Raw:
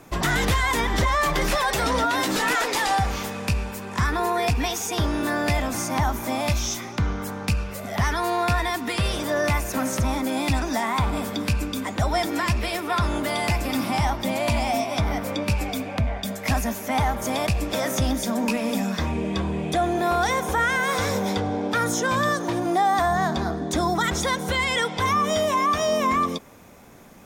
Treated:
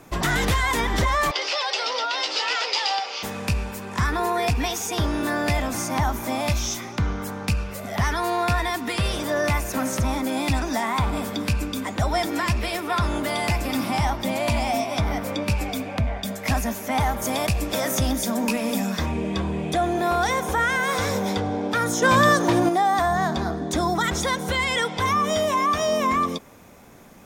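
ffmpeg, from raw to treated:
-filter_complex "[0:a]asettb=1/sr,asplit=3[a][b][c];[a]atrim=end=1.314[d];[b]atrim=start=1.31:end=3.23,asetpts=PTS-STARTPTS,afade=t=in:d=0.004:c=qsin,afade=t=out:st=1.916:d=0.004:c=qsin,highpass=f=500:w=0.5412,highpass=f=500:w=1.3066,equalizer=f=670:t=q:w=4:g=-6,equalizer=f=1.1k:t=q:w=4:g=-6,equalizer=f=1.7k:t=q:w=4:g=-8,equalizer=f=2.9k:t=q:w=4:g=7,equalizer=f=4.9k:t=q:w=4:g=10,lowpass=f=5.7k:w=0.5412,lowpass=f=5.7k:w=1.3066[e];[c]atrim=start=3.226[f];[d][e]acrossfade=d=0.004:c1=hsin:c2=qsin[g];[g][f]acrossfade=d=0.004:c1=qsin:c2=hsin,asettb=1/sr,asplit=3[h][i][j];[h]atrim=end=17.004[k];[i]atrim=start=17:end=19.06,asetpts=PTS-STARTPTS,afade=t=in:d=0.004:c=qsin,afade=t=out:st=2.056:d=0.004:c=qsin,highshelf=f=8k:g=6.5[l];[j]atrim=start=19.056[m];[k][l]acrossfade=d=0.004:c1=hsin:c2=qsin[n];[n][m]acrossfade=d=0.004:c1=qsin:c2=hsin,asettb=1/sr,asplit=3[o][p][q];[o]atrim=end=22.024[r];[p]atrim=start=22.02:end=22.69,asetpts=PTS-STARTPTS,afade=t=in:d=0.004:c=qsin,afade=t=out:st=0.666:d=0.004:c=qsin,acontrast=57[s];[q]atrim=start=22.686[t];[r][s]acrossfade=d=0.004:c1=hsin:c2=qsin[u];[u][t]acrossfade=d=0.004:c1=qsin:c2=hsin"

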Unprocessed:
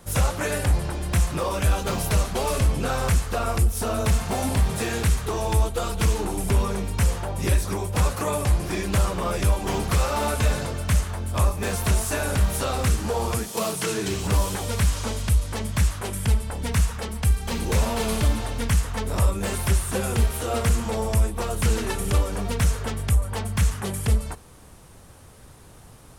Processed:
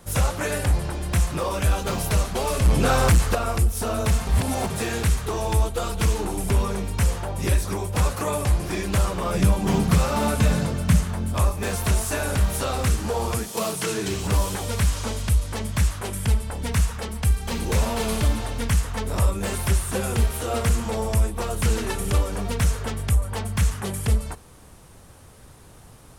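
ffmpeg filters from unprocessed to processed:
-filter_complex "[0:a]asettb=1/sr,asplit=3[a][b][c];[a]atrim=end=2.654[d];[b]atrim=start=2.65:end=3.35,asetpts=PTS-STARTPTS,afade=t=in:d=0.004:c=qsin,afade=t=out:st=0.696:d=0.004:c=qsin,aeval=exprs='0.266*sin(PI/2*1.41*val(0)/0.266)':c=same[e];[c]atrim=start=3.346[f];[d][e]acrossfade=d=0.004:c1=hsin:c2=qsin[g];[g][f]acrossfade=d=0.004:c1=qsin:c2=hsin,asettb=1/sr,asplit=3[h][i][j];[h]atrim=end=9.334[k];[i]atrim=start=9.33:end=11.34,asetpts=PTS-STARTPTS,afade=t=in:d=0.004:c=qsin,afade=t=out:st=2.006:d=0.004:c=qsin,equalizer=f=180:t=o:w=0.9:g=12[l];[j]atrim=start=11.336[m];[k][l]acrossfade=d=0.004:c1=hsin:c2=qsin[n];[n][m]acrossfade=d=0.004:c1=qsin:c2=hsin,asplit=3[o][p][q];[o]atrim=end=4.272[r];[p]atrim=start=4.268:end=4.702,asetpts=PTS-STARTPTS,areverse[s];[q]atrim=start=4.698[t];[r][s]acrossfade=d=0.004:c1=hsin:c2=hsin[u];[u][t]acrossfade=d=0.004:c1=hsin:c2=hsin"

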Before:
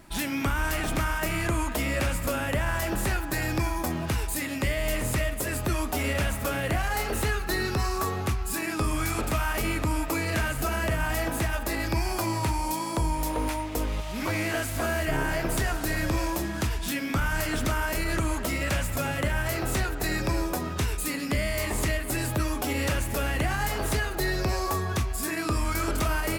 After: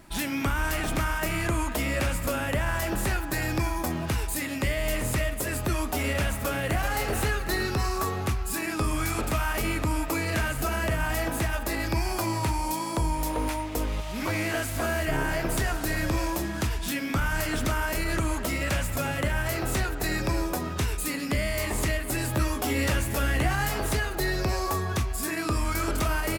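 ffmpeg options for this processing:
-filter_complex "[0:a]asplit=2[a][b];[b]afade=t=in:st=6.31:d=0.01,afade=t=out:st=6.89:d=0.01,aecho=0:1:380|760|1140|1520|1900|2280:0.398107|0.199054|0.0995268|0.0497634|0.0248817|0.0124408[c];[a][c]amix=inputs=2:normalize=0,asettb=1/sr,asplit=3[d][e][f];[d]atrim=end=22.324[g];[e]atrim=start=22.32:end=23.8,asetpts=PTS-STARTPTS,afade=t=in:d=0.004:c=qsin,afade=t=out:st=1.476:d=0.004:c=qsin,asplit=2[h][i];[i]adelay=15,volume=-5dB[j];[h][j]amix=inputs=2:normalize=0,atrim=end_sample=65268[k];[f]atrim=start=23.796[l];[g][k]acrossfade=d=0.004:c1=hsin:c2=qsin[m];[m][l]acrossfade=d=0.004:c1=qsin:c2=hsin"

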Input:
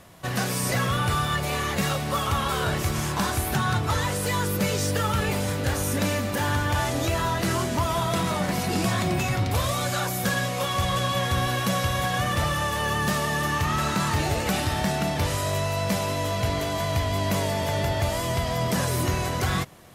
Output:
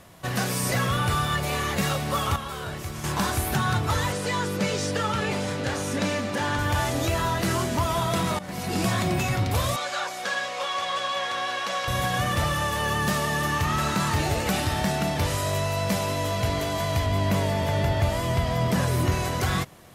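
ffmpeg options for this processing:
-filter_complex "[0:a]asettb=1/sr,asplit=3[a][b][c];[a]atrim=end=4.124[d];[b]atrim=start=4.12:end=6.59,asetpts=PTS-STARTPTS,afade=t=in:d=0.004:c=qsin,afade=t=out:st=2.466:d=0.004:c=qsin,highpass=130,lowpass=7.2k[e];[c]atrim=start=6.586[f];[d][e]acrossfade=d=0.004:c1=hsin:c2=qsin[g];[g][f]acrossfade=d=0.004:c1=qsin:c2=hsin,asettb=1/sr,asplit=3[h][i][j];[h]atrim=end=9.764[k];[i]atrim=start=9.76:end=11.88,asetpts=PTS-STARTPTS,afade=t=in:d=0.004:c=qsin,afade=t=out:st=2.116:d=0.004:c=qsin,highpass=570,lowpass=5.6k[l];[j]atrim=start=11.876[m];[k][l]acrossfade=d=0.004:c1=hsin:c2=qsin[n];[n][m]acrossfade=d=0.004:c1=qsin:c2=hsin,asettb=1/sr,asplit=3[o][p][q];[o]atrim=end=17.064[r];[p]atrim=start=17.06:end=19.12,asetpts=PTS-STARTPTS,afade=t=in:d=0.004:c=qsin,afade=t=out:st=2.056:d=0.004:c=qsin,bass=f=250:g=3,treble=f=4k:g=-5[s];[q]atrim=start=19.116[t];[r][s]acrossfade=d=0.004:c1=hsin:c2=qsin[u];[u][t]acrossfade=d=0.004:c1=qsin:c2=hsin,asplit=4[v][w][x][y];[v]atrim=end=2.362[z];[w]atrim=start=2.358:end=3.042,asetpts=PTS-STARTPTS,volume=-8dB[aa];[x]atrim=start=3.038:end=8.39,asetpts=PTS-STARTPTS,afade=t=out:st=5.348:d=0.004:c=hsin:silence=0.158489[ab];[y]atrim=start=8.39,asetpts=PTS-STARTPTS,afade=t=in:d=0.44:silence=0.158489[ac];[z][aa]acrossfade=d=0.004:c1=hsin:c2=hsin[ad];[ab][ac]concat=n=2:v=0:a=1[ae];[ad][ae]acrossfade=d=0.004:c1=hsin:c2=hsin"

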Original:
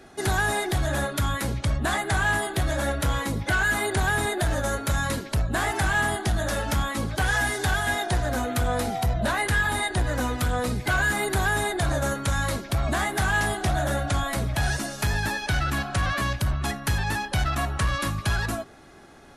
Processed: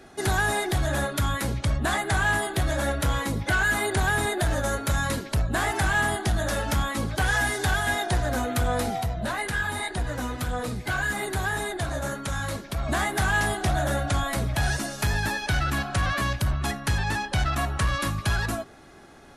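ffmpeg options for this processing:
-filter_complex "[0:a]asplit=3[a][b][c];[a]afade=t=out:st=9.01:d=0.02[d];[b]flanger=delay=4.2:depth=7.4:regen=-42:speed=1.8:shape=sinusoidal,afade=t=in:st=9.01:d=0.02,afade=t=out:st=12.88:d=0.02[e];[c]afade=t=in:st=12.88:d=0.02[f];[d][e][f]amix=inputs=3:normalize=0,asettb=1/sr,asplit=3[g][h][i];[g]atrim=end=16.824[j];[h]atrim=start=16.82:end=17.54,asetpts=PTS-STARTPTS,afade=t=in:d=0.004:c=qsin,afade=t=out:st=0.716:d=0.004:c=qsin,lowpass=10k[k];[i]atrim=start=17.536[l];[j][k]acrossfade=d=0.004:c1=hsin:c2=qsin[m];[m][l]acrossfade=d=0.004:c1=qsin:c2=hsin"

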